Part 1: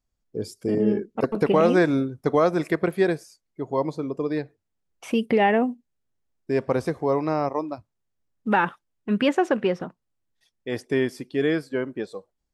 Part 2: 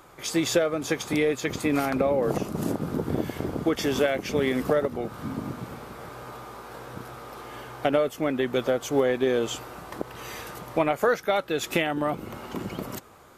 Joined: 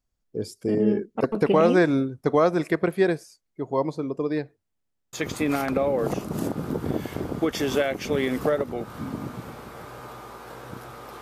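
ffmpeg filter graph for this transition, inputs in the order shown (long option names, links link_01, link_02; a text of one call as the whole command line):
ffmpeg -i cue0.wav -i cue1.wav -filter_complex "[0:a]apad=whole_dur=11.21,atrim=end=11.21,asplit=4[link_01][link_02][link_03][link_04];[link_01]atrim=end=4.832[link_05];[link_02]atrim=start=4.728:end=4.832[link_06];[link_03]atrim=start=4.728:end=4.832[link_07];[link_04]atrim=start=4.728:end=4.832[link_08];[1:a]atrim=start=1.368:end=7.45[link_09];[link_05][link_06]acrossfade=duration=0.004:curve1=hsin:curve2=hsin[link_10];[link_10][link_07]acrossfade=duration=0.004:curve1=hsin:curve2=hsin[link_11];[link_11][link_08]acrossfade=duration=0.004:curve1=hsin:curve2=hsin[link_12];[link_12][link_09]acrossfade=duration=0.004:curve1=hsin:curve2=hsin" out.wav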